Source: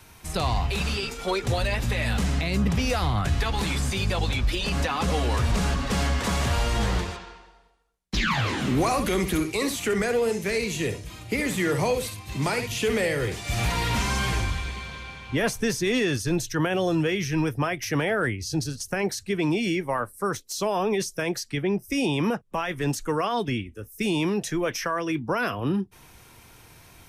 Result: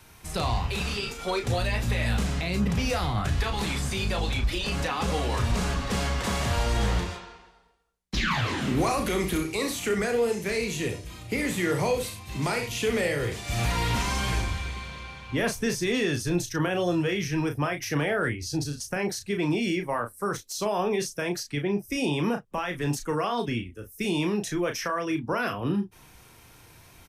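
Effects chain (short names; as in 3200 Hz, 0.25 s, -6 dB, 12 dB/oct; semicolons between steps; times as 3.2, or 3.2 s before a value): doubler 34 ms -7 dB; gain -2.5 dB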